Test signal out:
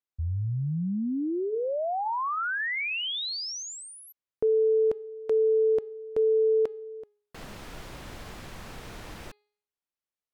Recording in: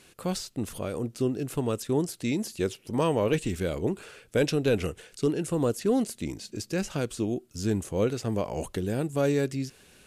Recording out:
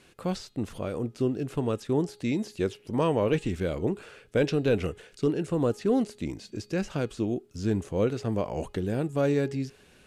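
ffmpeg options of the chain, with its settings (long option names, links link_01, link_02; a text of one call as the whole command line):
ffmpeg -i in.wav -filter_complex "[0:a]aemphasis=mode=reproduction:type=cd,bandreject=frequency=415.9:width_type=h:width=4,bandreject=frequency=831.8:width_type=h:width=4,bandreject=frequency=1247.7:width_type=h:width=4,bandreject=frequency=1663.6:width_type=h:width=4,bandreject=frequency=2079.5:width_type=h:width=4,bandreject=frequency=2495.4:width_type=h:width=4,bandreject=frequency=2911.3:width_type=h:width=4,bandreject=frequency=3327.2:width_type=h:width=4,bandreject=frequency=3743.1:width_type=h:width=4,bandreject=frequency=4159:width_type=h:width=4,bandreject=frequency=4574.9:width_type=h:width=4,acrossover=split=7000[link_01][link_02];[link_02]acompressor=threshold=-54dB:ratio=4:attack=1:release=60[link_03];[link_01][link_03]amix=inputs=2:normalize=0" out.wav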